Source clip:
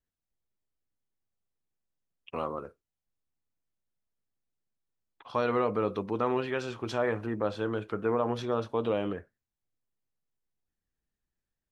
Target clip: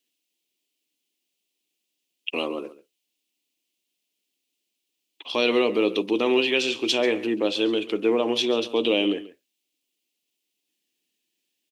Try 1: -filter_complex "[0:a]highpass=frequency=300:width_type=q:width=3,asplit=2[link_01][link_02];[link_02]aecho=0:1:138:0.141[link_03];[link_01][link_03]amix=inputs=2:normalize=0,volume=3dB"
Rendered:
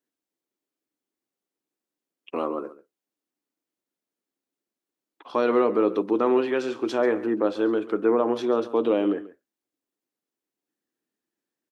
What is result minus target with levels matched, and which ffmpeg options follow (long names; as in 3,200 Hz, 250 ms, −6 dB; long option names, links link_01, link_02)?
4,000 Hz band −16.5 dB
-filter_complex "[0:a]highpass=frequency=300:width_type=q:width=3,highshelf=frequency=2000:width_type=q:width=3:gain=11.5,asplit=2[link_01][link_02];[link_02]aecho=0:1:138:0.141[link_03];[link_01][link_03]amix=inputs=2:normalize=0,volume=3dB"